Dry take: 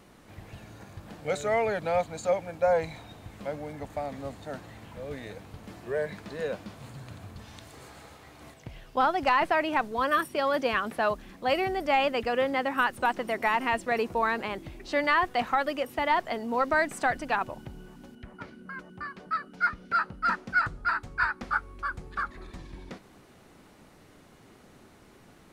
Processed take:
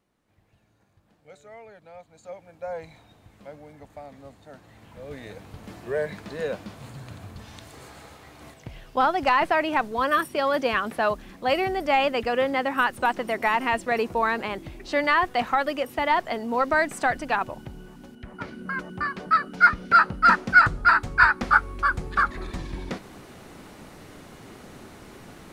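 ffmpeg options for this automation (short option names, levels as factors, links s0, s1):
-af "volume=3.16,afade=t=in:st=2.01:d=0.91:silence=0.281838,afade=t=in:st=4.57:d=1.07:silence=0.281838,afade=t=in:st=18.19:d=0.49:silence=0.446684"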